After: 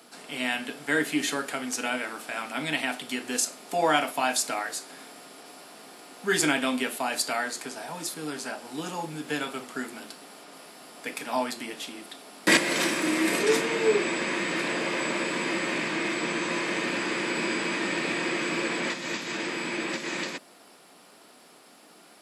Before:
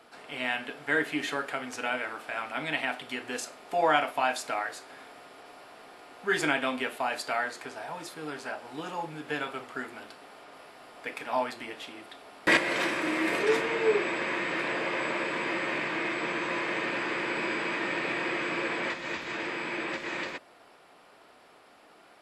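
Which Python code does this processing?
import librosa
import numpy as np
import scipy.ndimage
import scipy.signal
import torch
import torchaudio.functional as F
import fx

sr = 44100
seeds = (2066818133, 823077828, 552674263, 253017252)

y = scipy.signal.sosfilt(scipy.signal.butter(4, 190.0, 'highpass', fs=sr, output='sos'), x)
y = fx.bass_treble(y, sr, bass_db=15, treble_db=14)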